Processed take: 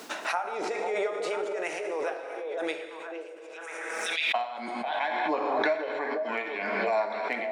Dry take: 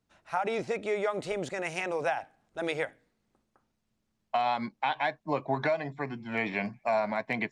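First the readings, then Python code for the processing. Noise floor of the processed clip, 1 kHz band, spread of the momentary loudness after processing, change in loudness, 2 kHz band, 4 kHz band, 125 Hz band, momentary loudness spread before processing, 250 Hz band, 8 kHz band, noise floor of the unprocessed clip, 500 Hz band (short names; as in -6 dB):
-43 dBFS, +1.0 dB, 11 LU, +1.5 dB, +3.0 dB, +6.0 dB, under -15 dB, 6 LU, -2.0 dB, +6.5 dB, -79 dBFS, +2.0 dB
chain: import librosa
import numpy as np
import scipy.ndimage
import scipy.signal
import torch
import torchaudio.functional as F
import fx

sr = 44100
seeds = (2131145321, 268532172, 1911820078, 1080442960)

p1 = scipy.signal.sosfilt(scipy.signal.butter(4, 300.0, 'highpass', fs=sr, output='sos'), x)
p2 = p1 * (1.0 - 0.86 / 2.0 + 0.86 / 2.0 * np.cos(2.0 * np.pi * 3.0 * (np.arange(len(p1)) / sr)))
p3 = p2 + fx.echo_stepped(p2, sr, ms=496, hz=480.0, octaves=1.4, feedback_pct=70, wet_db=-4.0, dry=0)
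p4 = fx.rev_plate(p3, sr, seeds[0], rt60_s=1.5, hf_ratio=0.8, predelay_ms=0, drr_db=5.0)
y = fx.pre_swell(p4, sr, db_per_s=22.0)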